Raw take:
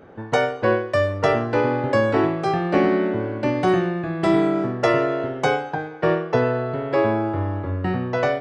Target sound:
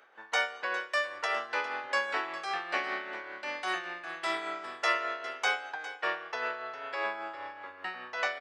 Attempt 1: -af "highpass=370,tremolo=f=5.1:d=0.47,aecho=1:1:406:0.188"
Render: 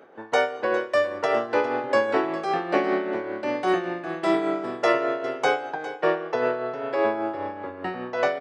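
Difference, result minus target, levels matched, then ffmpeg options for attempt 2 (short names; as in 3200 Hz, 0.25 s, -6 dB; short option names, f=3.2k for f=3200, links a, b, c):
500 Hz band +8.0 dB
-af "highpass=1.4k,tremolo=f=5.1:d=0.47,aecho=1:1:406:0.188"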